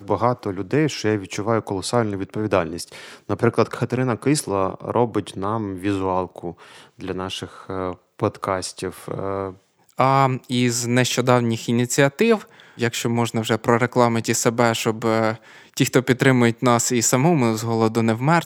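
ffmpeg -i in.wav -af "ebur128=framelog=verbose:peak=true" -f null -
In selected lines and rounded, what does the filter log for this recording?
Integrated loudness:
  I:         -21.0 LUFS
  Threshold: -31.3 LUFS
Loudness range:
  LRA:         7.8 LU
  Threshold: -41.6 LUFS
  LRA low:   -26.8 LUFS
  LRA high:  -19.0 LUFS
True peak:
  Peak:       -1.3 dBFS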